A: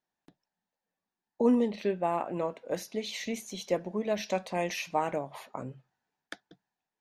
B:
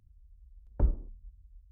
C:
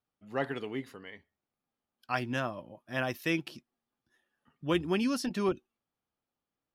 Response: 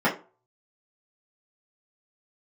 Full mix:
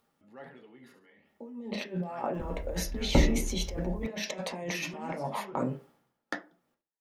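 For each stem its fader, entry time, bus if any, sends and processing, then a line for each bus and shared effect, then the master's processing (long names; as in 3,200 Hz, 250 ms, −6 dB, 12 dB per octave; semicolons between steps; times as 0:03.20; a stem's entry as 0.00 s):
−1.0 dB, 0.00 s, send −16 dB, no echo send, noise gate −45 dBFS, range −24 dB; compressor whose output falls as the input rises −40 dBFS, ratio −1
+2.5 dB, 2.35 s, send −12 dB, no echo send, noise gate with hold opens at −55 dBFS; pitch vibrato 3.6 Hz 52 cents; envelope flattener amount 50%
−17.0 dB, 0.00 s, send −16 dB, echo send −12.5 dB, upward compression, threshold −33 dBFS; flanger 1.4 Hz, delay 2.7 ms, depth 9.6 ms, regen −83%; level that may fall only so fast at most 56 dB per second; automatic ducking −6 dB, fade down 1.00 s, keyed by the first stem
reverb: on, RT60 0.35 s, pre-delay 3 ms
echo: repeating echo 69 ms, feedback 30%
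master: no processing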